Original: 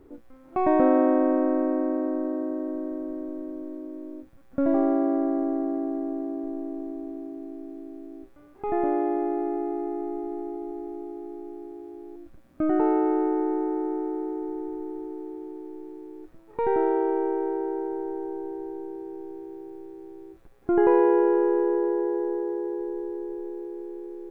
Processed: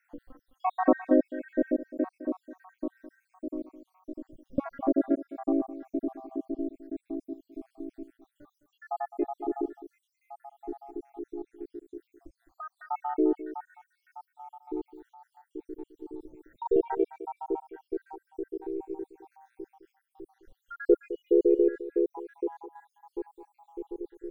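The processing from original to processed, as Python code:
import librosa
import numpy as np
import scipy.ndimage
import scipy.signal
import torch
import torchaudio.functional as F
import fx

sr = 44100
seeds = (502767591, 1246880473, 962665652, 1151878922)

y = fx.spec_dropout(x, sr, seeds[0], share_pct=80)
y = y + 10.0 ** (-15.0 / 20.0) * np.pad(y, (int(210 * sr / 1000.0), 0))[:len(y)]
y = fx.band_squash(y, sr, depth_pct=100, at=(16.14, 16.66))
y = F.gain(torch.from_numpy(y), 2.0).numpy()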